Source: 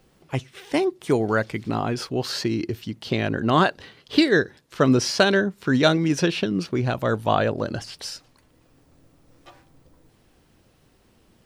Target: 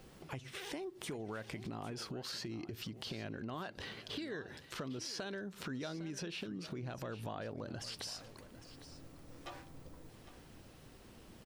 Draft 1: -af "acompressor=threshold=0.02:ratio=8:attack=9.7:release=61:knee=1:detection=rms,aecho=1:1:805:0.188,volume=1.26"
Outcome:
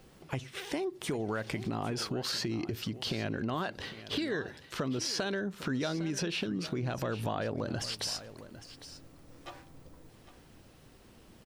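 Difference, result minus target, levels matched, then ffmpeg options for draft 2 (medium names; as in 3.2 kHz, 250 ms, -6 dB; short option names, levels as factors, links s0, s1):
compression: peak gain reduction -9 dB
-af "acompressor=threshold=0.00596:ratio=8:attack=9.7:release=61:knee=1:detection=rms,aecho=1:1:805:0.188,volume=1.26"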